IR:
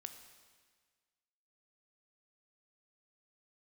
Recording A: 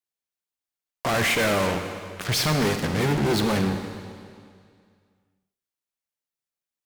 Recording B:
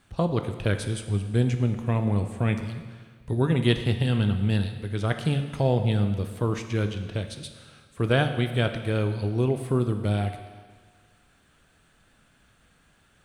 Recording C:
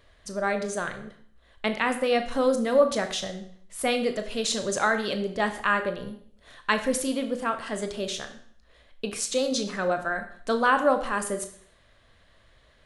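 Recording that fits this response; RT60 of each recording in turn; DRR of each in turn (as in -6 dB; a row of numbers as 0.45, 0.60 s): B; 2.2, 1.6, 0.60 s; 6.0, 7.0, 7.0 dB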